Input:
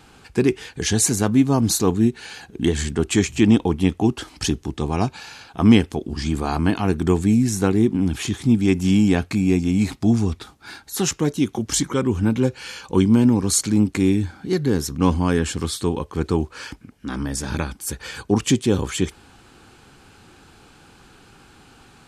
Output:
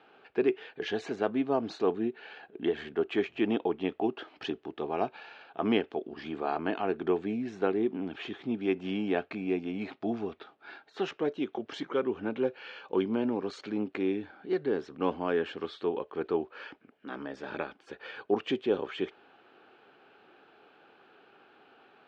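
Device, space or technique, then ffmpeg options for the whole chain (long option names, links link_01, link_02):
phone earpiece: -filter_complex "[0:a]asettb=1/sr,asplit=3[link_01][link_02][link_03];[link_01]atrim=end=1.994[link_04];[link_02]atrim=start=1.99:end=3.49,asetpts=PTS-STARTPTS,afade=type=in:duration=0.004:curve=qsin,afade=type=out:start_time=1.496:duration=0.004:curve=qsin,highshelf=frequency=4900:gain=-6[link_05];[link_03]atrim=start=3.486[link_06];[link_04][link_05]acrossfade=duration=0.004:curve1=hsin:curve2=qsin[link_07];[link_07][link_06]acrossfade=duration=0.004:curve1=qsin:curve2=hsin,highpass=400,equalizer=frequency=410:width_type=q:width=4:gain=5,equalizer=frequency=640:width_type=q:width=4:gain=6,equalizer=frequency=1000:width_type=q:width=4:gain=-4,equalizer=frequency=2100:width_type=q:width=4:gain=-4,lowpass=frequency=3000:width=0.5412,lowpass=frequency=3000:width=1.3066,volume=-6.5dB"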